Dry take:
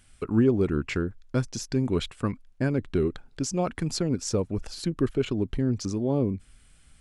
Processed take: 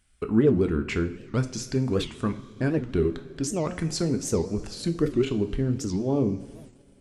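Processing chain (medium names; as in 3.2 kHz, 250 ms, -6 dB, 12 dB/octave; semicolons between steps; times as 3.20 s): two-slope reverb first 0.43 s, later 3.9 s, from -18 dB, DRR 6.5 dB; gate -45 dBFS, range -9 dB; warped record 78 rpm, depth 250 cents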